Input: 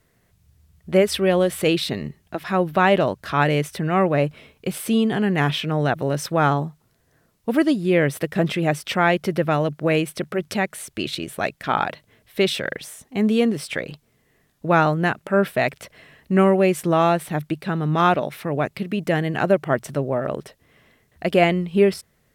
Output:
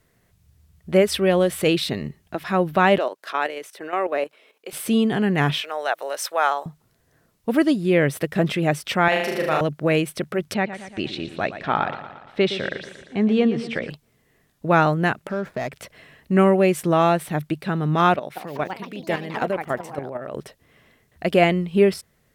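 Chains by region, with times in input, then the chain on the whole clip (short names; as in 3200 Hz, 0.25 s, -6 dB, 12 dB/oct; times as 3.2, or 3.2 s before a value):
2.98–4.73 HPF 360 Hz 24 dB/oct + level quantiser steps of 11 dB
5.61–6.66 HPF 550 Hz 24 dB/oct + high shelf 6100 Hz +4.5 dB
9.08–9.61 HPF 650 Hz 6 dB/oct + flutter echo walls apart 6.6 m, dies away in 0.92 s
10.54–13.9 air absorption 140 m + feedback echo 0.116 s, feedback 57%, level -12 dB
15.29–15.72 median filter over 15 samples + high shelf 4900 Hz -6 dB + compressor 3:1, threshold -24 dBFS
18.16–20.35 low shelf 190 Hz -8.5 dB + level quantiser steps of 11 dB + echoes that change speed 0.195 s, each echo +4 st, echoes 2, each echo -6 dB
whole clip: dry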